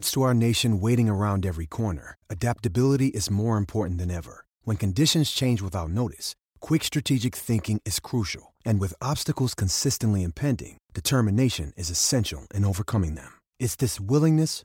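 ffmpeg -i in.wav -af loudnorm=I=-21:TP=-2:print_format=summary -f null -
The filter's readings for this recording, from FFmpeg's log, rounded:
Input Integrated:    -25.2 LUFS
Input True Peak:      -9.4 dBTP
Input LRA:             2.2 LU
Input Threshold:     -35.5 LUFS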